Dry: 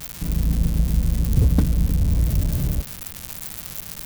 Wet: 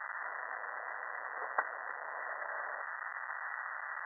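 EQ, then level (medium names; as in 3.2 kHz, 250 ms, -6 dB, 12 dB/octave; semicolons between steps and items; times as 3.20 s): Bessel high-pass 1.3 kHz, order 6; brick-wall FIR low-pass 2 kHz; +12.5 dB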